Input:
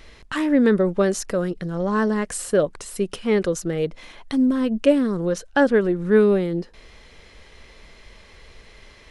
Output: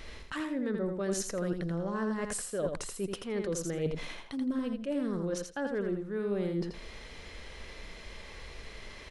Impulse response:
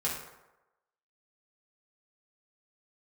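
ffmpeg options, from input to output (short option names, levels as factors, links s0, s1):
-af "areverse,acompressor=threshold=0.0282:ratio=12,areverse,aecho=1:1:83|166|249:0.531|0.0849|0.0136"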